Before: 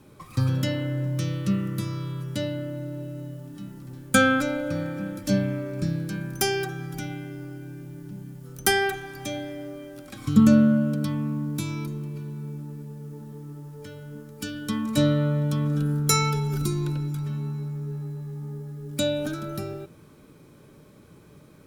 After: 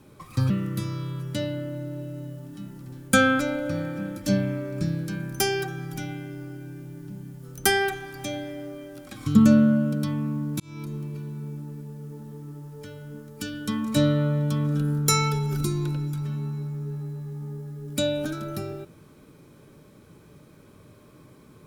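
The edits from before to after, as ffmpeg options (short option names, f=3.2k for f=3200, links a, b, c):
-filter_complex "[0:a]asplit=3[a][b][c];[a]atrim=end=0.502[d];[b]atrim=start=1.508:end=11.61,asetpts=PTS-STARTPTS,afade=t=out:st=10.098:d=0.004:c=hsin[e];[c]atrim=start=11.61,asetpts=PTS-STARTPTS,afade=t=in:d=0.35[f];[e][f]concat=n=2:v=0:a=1[g];[d][g]acrossfade=d=0.004:c1=hsin:c2=hsin"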